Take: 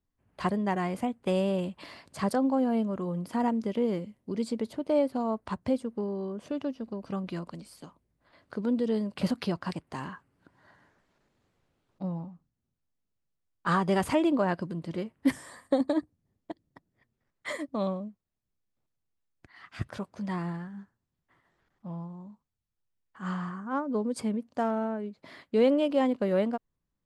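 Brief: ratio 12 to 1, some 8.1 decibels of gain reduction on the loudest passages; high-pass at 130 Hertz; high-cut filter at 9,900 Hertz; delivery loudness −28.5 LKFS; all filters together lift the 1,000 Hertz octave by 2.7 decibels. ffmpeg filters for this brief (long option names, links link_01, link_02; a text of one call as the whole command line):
ffmpeg -i in.wav -af "highpass=130,lowpass=9900,equalizer=frequency=1000:width_type=o:gain=3.5,acompressor=threshold=-26dB:ratio=12,volume=5.5dB" out.wav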